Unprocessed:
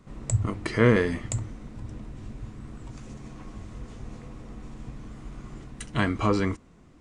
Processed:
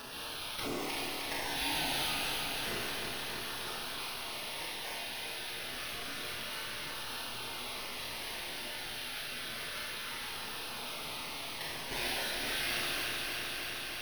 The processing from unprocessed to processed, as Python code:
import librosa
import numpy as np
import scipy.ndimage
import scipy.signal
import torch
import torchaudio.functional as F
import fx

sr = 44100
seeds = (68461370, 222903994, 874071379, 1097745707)

y = scipy.signal.medfilt(x, 9)
y = fx.weighting(y, sr, curve='D')
y = fx.spec_gate(y, sr, threshold_db=-25, keep='weak')
y = scipy.signal.sosfilt(scipy.signal.butter(2, 52.0, 'highpass', fs=sr, output='sos'), y)
y = fx.peak_eq(y, sr, hz=310.0, db=9.0, octaves=0.68)
y = fx.sample_hold(y, sr, seeds[0], rate_hz=7300.0, jitter_pct=0)
y = fx.filter_lfo_notch(y, sr, shape='saw_down', hz=0.58, low_hz=650.0, high_hz=2200.0, q=3.0)
y = fx.stretch_vocoder_free(y, sr, factor=2.0)
y = fx.echo_feedback(y, sr, ms=309, feedback_pct=56, wet_db=-8.5)
y = fx.rev_schroeder(y, sr, rt60_s=0.6, comb_ms=25, drr_db=-2.5)
y = fx.env_flatten(y, sr, amount_pct=70)